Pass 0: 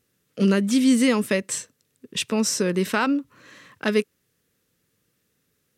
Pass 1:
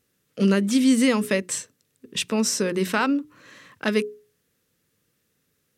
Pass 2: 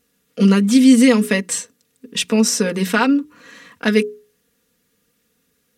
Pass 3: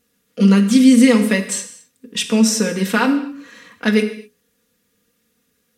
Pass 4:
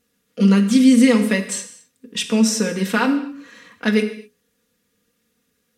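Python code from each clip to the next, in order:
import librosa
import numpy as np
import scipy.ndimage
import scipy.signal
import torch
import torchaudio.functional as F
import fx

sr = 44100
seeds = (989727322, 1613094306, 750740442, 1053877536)

y1 = fx.hum_notches(x, sr, base_hz=60, count=7)
y2 = y1 + 0.67 * np.pad(y1, (int(4.2 * sr / 1000.0), 0))[:len(y1)]
y2 = F.gain(torch.from_numpy(y2), 4.0).numpy()
y3 = fx.rev_gated(y2, sr, seeds[0], gate_ms=280, shape='falling', drr_db=7.0)
y3 = F.gain(torch.from_numpy(y3), -1.0).numpy()
y4 = fx.high_shelf(y3, sr, hz=11000.0, db=-4.0)
y4 = F.gain(torch.from_numpy(y4), -2.0).numpy()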